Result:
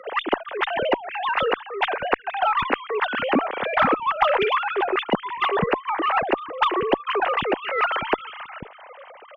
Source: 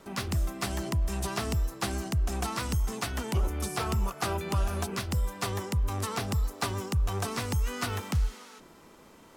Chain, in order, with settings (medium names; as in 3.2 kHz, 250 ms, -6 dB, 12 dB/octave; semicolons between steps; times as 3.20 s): formants replaced by sine waves; bands offset in time highs, lows 490 ms, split 200 Hz; Chebyshev shaper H 2 -21 dB, 5 -32 dB, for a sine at -11 dBFS; trim +5.5 dB